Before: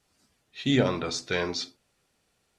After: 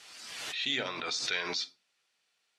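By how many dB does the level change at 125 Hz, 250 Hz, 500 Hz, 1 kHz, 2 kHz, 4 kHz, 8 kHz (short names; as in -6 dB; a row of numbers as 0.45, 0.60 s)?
-21.5, -17.0, -12.5, -4.5, -0.5, +1.5, -0.5 dB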